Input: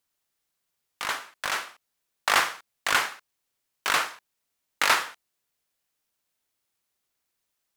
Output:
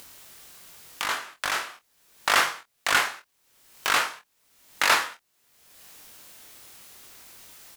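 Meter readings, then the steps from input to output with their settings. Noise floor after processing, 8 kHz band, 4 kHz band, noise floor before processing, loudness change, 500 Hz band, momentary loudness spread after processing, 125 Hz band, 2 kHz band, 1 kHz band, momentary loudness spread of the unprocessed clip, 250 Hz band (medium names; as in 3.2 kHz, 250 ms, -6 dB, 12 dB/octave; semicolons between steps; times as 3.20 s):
-71 dBFS, +1.5 dB, +1.5 dB, -80 dBFS, +1.5 dB, +1.5 dB, 10 LU, +2.0 dB, +1.5 dB, +1.0 dB, 11 LU, +2.0 dB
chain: upward compressor, threshold -26 dBFS; on a send: early reflections 23 ms -4.5 dB, 47 ms -14.5 dB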